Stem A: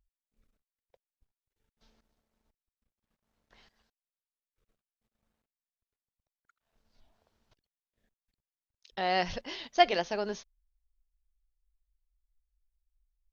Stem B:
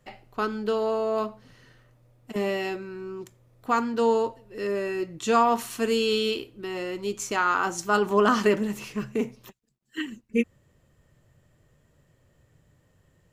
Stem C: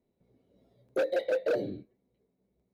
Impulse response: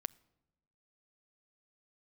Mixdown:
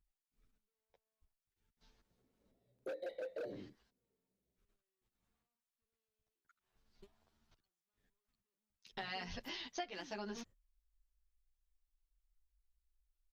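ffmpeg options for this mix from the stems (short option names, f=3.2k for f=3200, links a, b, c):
-filter_complex "[0:a]equalizer=f=550:w=2.2:g=-7,asplit=2[a][b];[b]adelay=9.9,afreqshift=0.66[c];[a][c]amix=inputs=2:normalize=1,volume=0dB,asplit=2[d][e];[1:a]asoftclip=type=hard:threshold=-31dB,volume=-14dB[f];[2:a]adelay=1900,volume=-13dB[g];[e]apad=whole_len=587536[h];[f][h]sidechaingate=range=-50dB:threshold=-59dB:ratio=16:detection=peak[i];[d][i][g]amix=inputs=3:normalize=0,acompressor=threshold=-40dB:ratio=10"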